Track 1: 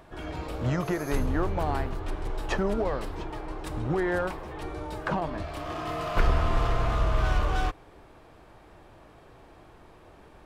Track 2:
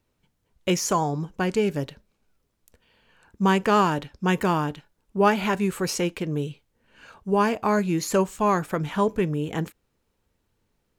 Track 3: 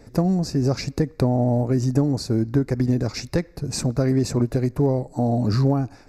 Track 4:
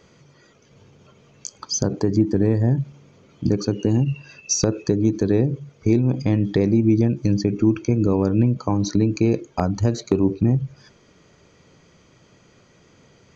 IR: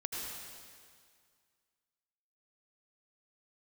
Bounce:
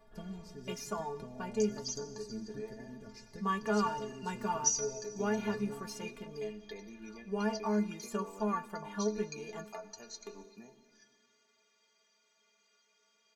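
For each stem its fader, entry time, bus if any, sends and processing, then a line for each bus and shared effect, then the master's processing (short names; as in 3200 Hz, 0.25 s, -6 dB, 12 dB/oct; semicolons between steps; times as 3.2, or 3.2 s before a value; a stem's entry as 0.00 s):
-2.5 dB, 0.00 s, no send, compressor, threshold -36 dBFS, peak gain reduction 18 dB; auto duck -14 dB, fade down 0.25 s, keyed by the second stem
-7.0 dB, 0.00 s, send -22 dB, bell 900 Hz +7.5 dB 1.8 oct
-14.5 dB, 0.00 s, send -6.5 dB, dry
-7.0 dB, 0.15 s, send -11.5 dB, Bessel high-pass 500 Hz, order 2; tilt +2.5 dB/oct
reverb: on, RT60 2.0 s, pre-delay 73 ms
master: low shelf 66 Hz +7.5 dB; metallic resonator 210 Hz, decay 0.21 s, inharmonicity 0.008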